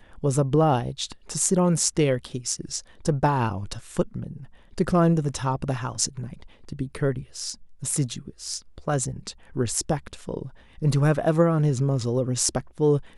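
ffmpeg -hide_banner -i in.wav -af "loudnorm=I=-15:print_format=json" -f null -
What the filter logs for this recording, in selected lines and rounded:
"input_i" : "-24.6",
"input_tp" : "-3.4",
"input_lra" : "5.0",
"input_thresh" : "-35.1",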